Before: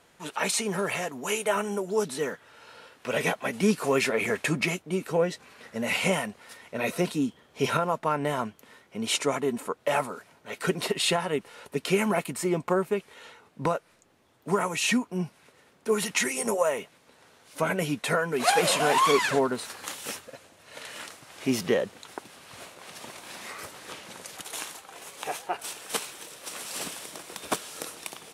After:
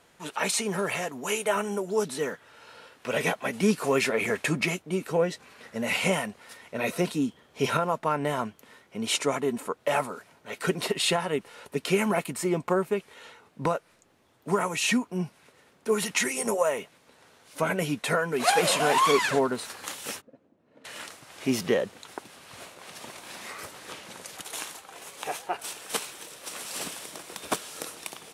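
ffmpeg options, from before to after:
-filter_complex "[0:a]asplit=3[a][b][c];[a]afade=t=out:st=20.2:d=0.02[d];[b]bandpass=f=250:t=q:w=1.9,afade=t=in:st=20.2:d=0.02,afade=t=out:st=20.84:d=0.02[e];[c]afade=t=in:st=20.84:d=0.02[f];[d][e][f]amix=inputs=3:normalize=0"

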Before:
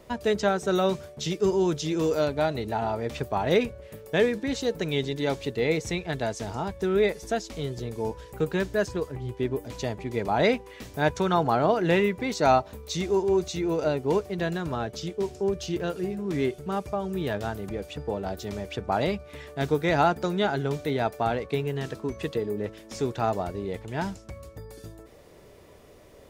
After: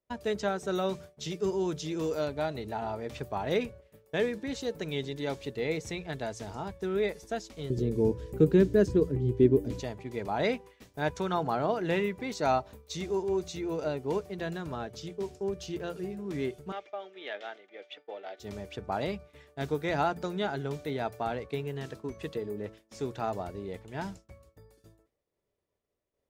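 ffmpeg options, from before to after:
-filter_complex "[0:a]asettb=1/sr,asplit=3[a][b][c];[a]atrim=end=7.704[d];[b]atrim=start=7.7:end=9.8,asetpts=PTS-STARTPTS,afade=t=in:d=0.004:c=qsin,afade=t=out:st=2.096:d=0.004:c=qsin,lowshelf=f=530:t=q:w=1.5:g=11.5[e];[c]atrim=start=9.796[f];[d][e]acrossfade=d=0.004:c1=hsin:c2=qsin[g];[g][f]acrossfade=d=0.004:c1=qsin:c2=hsin,asettb=1/sr,asplit=3[h][i][j];[h]atrim=end=16.724[k];[i]atrim=start=16.72:end=18.4,asetpts=PTS-STARTPTS,afade=t=in:d=0.004:c=qsin,afade=t=out:st=1.676:d=0.004:c=qsin,highpass=f=400:w=0.5412,highpass=f=400:w=1.3066,equalizer=f=430:t=q:w=4:g=-6,equalizer=f=1k:t=q:w=4:g=-9,equalizer=f=2.1k:t=q:w=4:g=9,equalizer=f=3.3k:t=q:w=4:g=7,equalizer=f=4.7k:t=q:w=4:g=-6,lowpass=f=5.1k:w=0.5412,lowpass=f=5.1k:w=1.3066[l];[j]atrim=start=18.396[m];[k][l]acrossfade=d=0.004:c1=hsin:c2=qsin[n];[n][m]acrossfade=d=0.004:c1=qsin:c2=hsin,bandreject=f=57.48:t=h:w=4,bandreject=f=114.96:t=h:w=4,bandreject=f=172.44:t=h:w=4,agate=range=-33dB:threshold=-35dB:ratio=3:detection=peak,volume=-6.5dB"

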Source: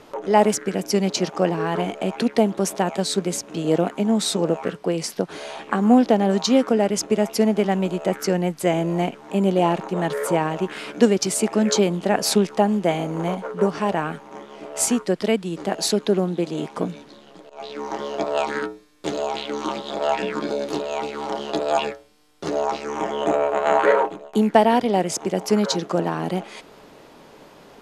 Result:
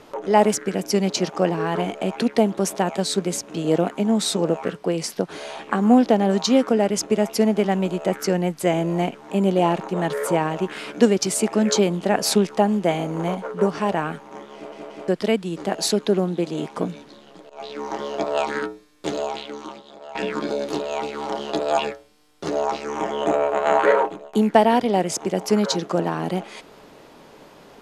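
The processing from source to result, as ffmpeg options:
-filter_complex "[0:a]asplit=5[a][b][c][d][e];[a]atrim=end=14.722[f];[b]atrim=start=14.538:end=14.722[g];[c]atrim=start=14.538:end=14.722[h];[d]atrim=start=15.078:end=20.15,asetpts=PTS-STARTPTS,afade=t=out:st=4.102:d=0.97:c=qua:silence=0.125893[i];[e]atrim=start=20.15,asetpts=PTS-STARTPTS,afade=t=in:d=0.004:c=hsin:silence=0.125893[j];[f][g]acrossfade=d=0.004:c1=hsin:c2=hsin[k];[k][h]acrossfade=d=0.004:c1=hsin:c2=hsin[l];[i][j]concat=n=2:v=0:a=1[m];[l][m]acrossfade=d=0.004:c1=hsin:c2=hsin"

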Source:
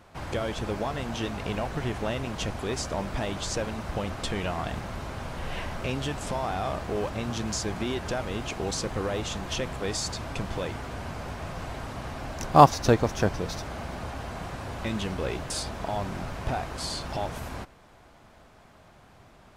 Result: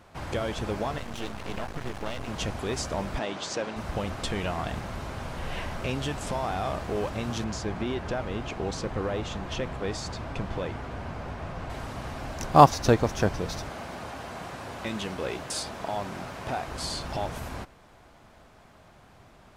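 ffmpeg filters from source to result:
-filter_complex "[0:a]asettb=1/sr,asplit=3[a][b][c];[a]atrim=end=0.984[d];[b]atrim=start=0.98:end=2.28,asetpts=PTS-STARTPTS,afade=t=in:d=0.004:c=qsin,afade=t=out:st=1.296:d=0.004:c=qsin,aeval=exprs='max(val(0),0)':c=same[e];[c]atrim=start=2.276[f];[d][e]acrossfade=d=0.004:c1=hsin:c2=qsin[g];[g][f]acrossfade=d=0.004:c1=qsin:c2=hsin,asplit=3[h][i][j];[h]afade=t=out:st=3.18:d=0.02[k];[i]highpass=220,lowpass=6.3k,afade=t=in:st=3.18:d=0.02,afade=t=out:st=3.75:d=0.02[l];[j]afade=t=in:st=3.75:d=0.02[m];[k][l][m]amix=inputs=3:normalize=0,asettb=1/sr,asplit=3[n][o][p];[n]atrim=end=7.444[q];[o]atrim=start=7.44:end=11.7,asetpts=PTS-STARTPTS,afade=t=in:d=0.004:c=qsin,afade=t=out:st=4.256:d=0.004:c=qsin,lowpass=f=2.6k:p=1[r];[p]atrim=start=11.696[s];[q][r]acrossfade=d=0.004:c1=hsin:c2=qsin[t];[t][s]acrossfade=d=0.004:c1=qsin:c2=hsin,asettb=1/sr,asplit=3[u][v][w];[u]atrim=end=13.694[x];[v]atrim=start=13.69:end=16.68,asetpts=PTS-STARTPTS,afade=t=in:d=0.004:c=qsin,afade=t=out:st=2.986:d=0.004:c=qsin,highpass=f=210:p=1[y];[w]atrim=start=16.676[z];[x][y]acrossfade=d=0.004:c1=hsin:c2=qsin[aa];[aa][z]acrossfade=d=0.004:c1=qsin:c2=hsin"

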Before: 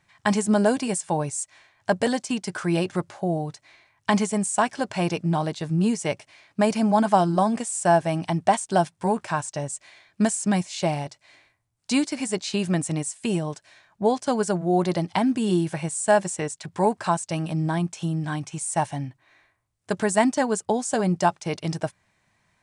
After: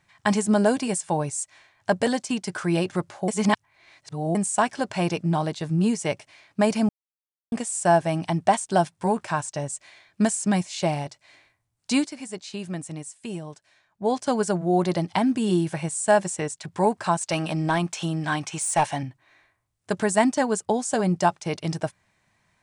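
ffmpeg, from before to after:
-filter_complex "[0:a]asettb=1/sr,asplit=3[a][b][c];[a]atrim=end=17.214[d];[b]atrim=start=17.21:end=19.03,asetpts=PTS-STARTPTS,afade=t=in:d=0.004:c=qsin,afade=t=out:st=1.816:d=0.004:c=qsin,asplit=2[e][f];[f]highpass=f=720:p=1,volume=14dB,asoftclip=type=tanh:threshold=-11dB[g];[e][g]amix=inputs=2:normalize=0,lowpass=f=5.4k:p=1,volume=-6dB[h];[c]atrim=start=19.026[i];[d][h]acrossfade=d=0.004:c1=hsin:c2=qsin[j];[j][i]acrossfade=d=0.004:c1=qsin:c2=hsin,asplit=7[k][l][m][n][o][p][q];[k]atrim=end=3.282[r];[l]atrim=start=3.278:end=4.352,asetpts=PTS-STARTPTS,areverse[s];[m]atrim=start=4.348:end=6.89,asetpts=PTS-STARTPTS,afade=t=out:st=2.538:d=0.004:c=hsin[t];[n]atrim=start=6.89:end=7.52,asetpts=PTS-STARTPTS,volume=0[u];[o]atrim=start=7.52:end=12.13,asetpts=PTS-STARTPTS,afade=t=in:d=0.004:c=hsin,afade=t=out:st=4.47:d=0.14:silence=0.375837[v];[p]atrim=start=12.13:end=14,asetpts=PTS-STARTPTS,volume=-8.5dB[w];[q]atrim=start=14,asetpts=PTS-STARTPTS,afade=t=in:d=0.14:silence=0.375837[x];[r][s]acrossfade=d=0.004:c1=hsin:c2=hsin[y];[t][u][v][w][x]concat=n=5:v=0:a=1[z];[y][z]acrossfade=d=0.004:c1=hsin:c2=hsin"

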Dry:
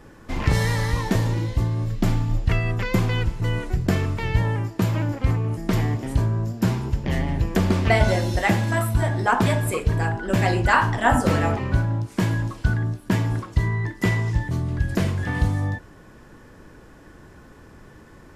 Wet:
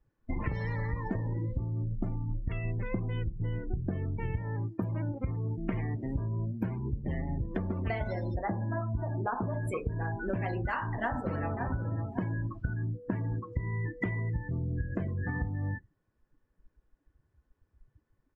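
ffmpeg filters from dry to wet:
-filter_complex "[0:a]asettb=1/sr,asplit=3[a][b][c];[a]atrim=end=2.654[d];[b]atrim=start=2.65:end=4.37,asetpts=PTS-STARTPTS,afade=t=in:d=0.004:c=qsin,afade=t=out:st=1.716:d=0.004:c=qsin,tiltshelf=f=680:g=3[e];[c]atrim=start=4.366[f];[d][e]acrossfade=d=0.004:c1=hsin:c2=qsin[g];[g][f]acrossfade=d=0.004:c1=qsin:c2=hsin,asettb=1/sr,asplit=3[h][i][j];[h]atrim=end=5.644[k];[i]atrim=start=5.64:end=6.84,asetpts=PTS-STARTPTS,afade=t=in:d=0.004:c=qsin,afade=t=out:st=1.196:d=0.004:c=qsin,equalizer=f=2.3k:w=1.5:g=5[l];[j]atrim=start=6.836[m];[k][l]acrossfade=d=0.004:c1=hsin:c2=qsin[n];[n][m]acrossfade=d=0.004:c1=qsin:c2=hsin,asettb=1/sr,asplit=3[o][p][q];[o]atrim=end=8.344[r];[p]atrim=start=8.34:end=9.54,asetpts=PTS-STARTPTS,afade=t=in:d=0.004:c=qsin,afade=t=out:st=1.196:d=0.004:c=qsin,lowpass=f=1.5k:w=0.5412,lowpass=f=1.5k:w=1.3066[s];[q]atrim=start=9.536[t];[r][s]acrossfade=d=0.004:c1=hsin:c2=qsin[u];[u][t]acrossfade=d=0.004:c1=qsin:c2=hsin,asplit=2[v][w];[w]afade=t=in:st=10.96:d=0.01,afade=t=out:st=11.65:d=0.01,aecho=0:1:550|1100|1650:0.334965|0.0837414|0.0209353[x];[v][x]amix=inputs=2:normalize=0,asettb=1/sr,asplit=3[y][z][aa];[y]atrim=end=12.944[ab];[z]atrim=start=12.94:end=15.35,asetpts=PTS-STARTPTS,afade=t=in:d=0.004:c=qsin,afade=t=out:st=2.406:d=0.004:c=qsin,aeval=exprs='val(0)+0.00891*sin(2*PI*490*n/s)':c=same[ac];[aa]atrim=start=15.346[ad];[ab][ac]acrossfade=d=0.004:c1=hsin:c2=qsin[ae];[ae][ad]acrossfade=d=0.004:c1=qsin:c2=hsin,afftdn=nr=33:nf=-28,highshelf=f=6.9k:g=-9.5,acompressor=threshold=-29dB:ratio=12"

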